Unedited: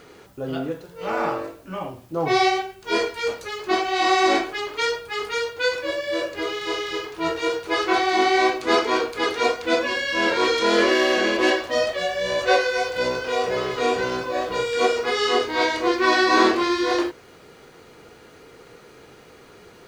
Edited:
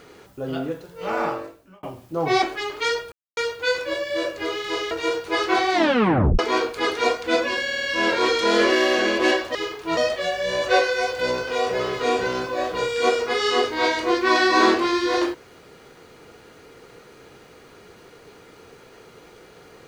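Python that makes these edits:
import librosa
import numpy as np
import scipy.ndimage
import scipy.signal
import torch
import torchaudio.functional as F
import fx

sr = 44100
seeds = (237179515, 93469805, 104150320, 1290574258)

y = fx.edit(x, sr, fx.fade_out_span(start_s=1.22, length_s=0.61),
    fx.cut(start_s=2.42, length_s=1.97),
    fx.silence(start_s=5.09, length_s=0.25),
    fx.move(start_s=6.88, length_s=0.42, to_s=11.74),
    fx.tape_stop(start_s=8.13, length_s=0.65),
    fx.stutter(start_s=10.02, slice_s=0.05, count=5), tone=tone)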